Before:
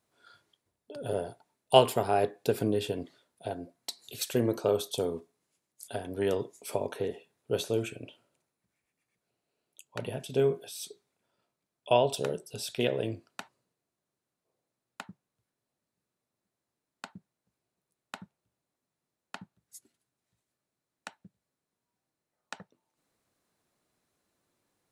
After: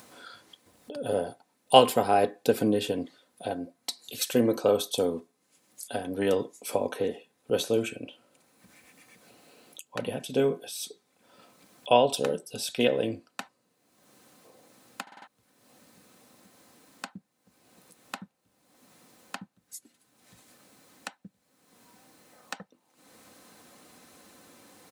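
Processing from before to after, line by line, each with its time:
15.02 s: stutter in place 0.05 s, 5 plays
whole clip: high-pass 98 Hz; comb 3.9 ms, depth 47%; upward compressor, threshold -41 dBFS; trim +3.5 dB

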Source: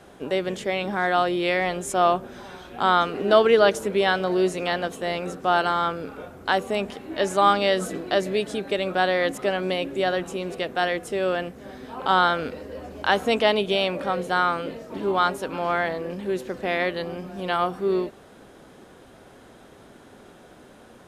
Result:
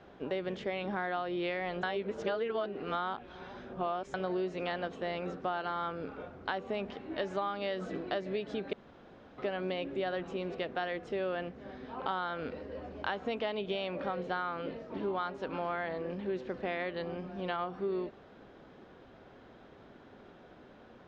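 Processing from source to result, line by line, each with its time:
1.83–4.14 s: reverse
8.73–9.38 s: room tone
whole clip: compression 12:1, threshold -24 dBFS; Bessel low-pass 3.4 kHz, order 6; trim -6 dB

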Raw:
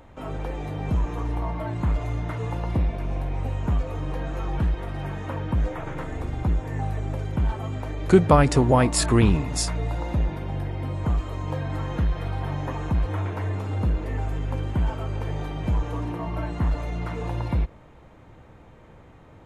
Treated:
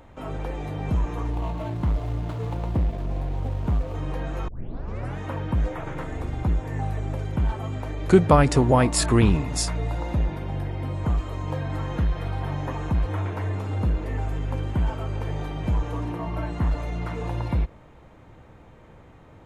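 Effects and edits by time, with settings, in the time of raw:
1.30–3.95 s: median filter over 25 samples
4.48 s: tape start 0.70 s

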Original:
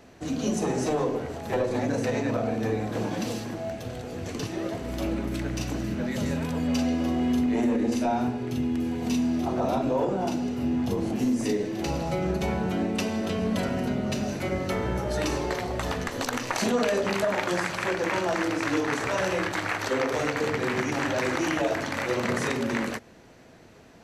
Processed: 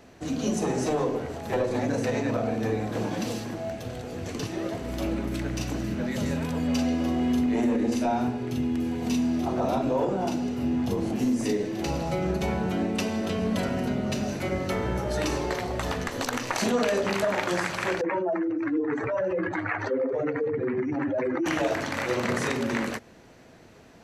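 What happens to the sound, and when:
18.01–21.46 s: spectral contrast enhancement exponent 2.2

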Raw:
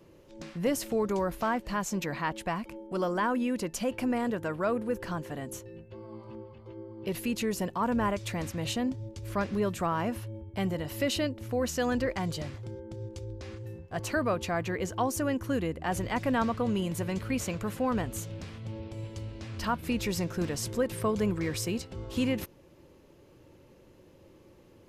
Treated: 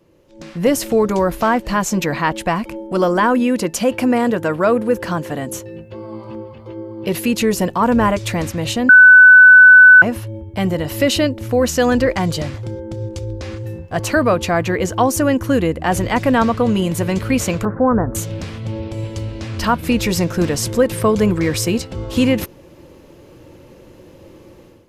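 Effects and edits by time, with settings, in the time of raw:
3.40–7.40 s: high-pass 88 Hz 6 dB/octave
8.89–10.02 s: bleep 1.5 kHz -13 dBFS
17.65–18.15 s: steep low-pass 1.6 kHz 48 dB/octave
whole clip: band-stop 400 Hz, Q 12; level rider gain up to 13.5 dB; peaking EQ 420 Hz +2.5 dB

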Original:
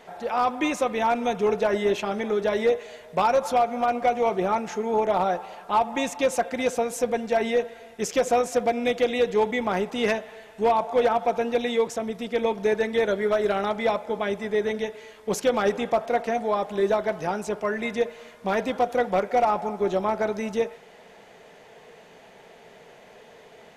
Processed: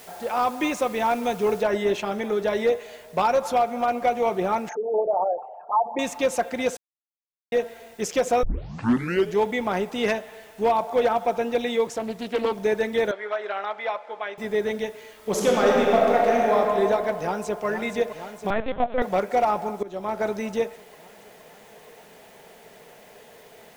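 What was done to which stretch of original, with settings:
1.62 s: noise floor step -48 dB -58 dB
4.69–5.99 s: resonances exaggerated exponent 3
6.77–7.52 s: mute
8.43 s: tape start 0.97 s
11.87–12.53 s: loudspeaker Doppler distortion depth 0.28 ms
13.11–14.38 s: band-pass 760–2900 Hz
15.15–16.55 s: reverb throw, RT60 2.9 s, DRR -3 dB
17.18–17.65 s: echo throw 470 ms, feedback 75%, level -8.5 dB
18.50–19.02 s: LPC vocoder at 8 kHz pitch kept
19.83–20.25 s: fade in, from -19 dB

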